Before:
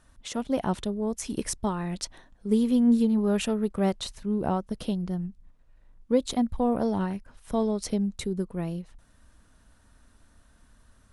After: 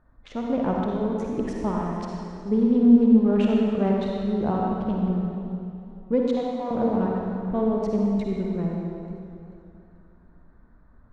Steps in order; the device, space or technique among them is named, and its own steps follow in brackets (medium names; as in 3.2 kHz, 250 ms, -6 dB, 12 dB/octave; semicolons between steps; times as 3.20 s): local Wiener filter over 15 samples; 6.21–6.71 s: high-pass 840 Hz; low-pass 2.4 kHz 12 dB/octave; stairwell (reverberation RT60 2.4 s, pre-delay 45 ms, DRR -2 dB); modulated delay 441 ms, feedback 37%, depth 87 cents, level -19 dB